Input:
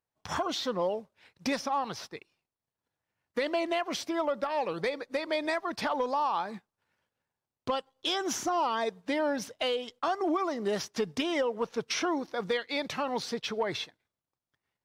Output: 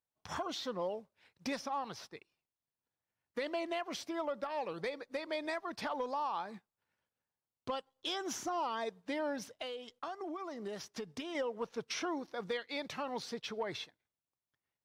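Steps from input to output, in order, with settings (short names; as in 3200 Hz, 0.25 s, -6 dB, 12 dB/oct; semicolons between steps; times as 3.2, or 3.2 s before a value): 9.49–11.35 compressor 4:1, threshold -32 dBFS, peak gain reduction 6.5 dB; gain -7.5 dB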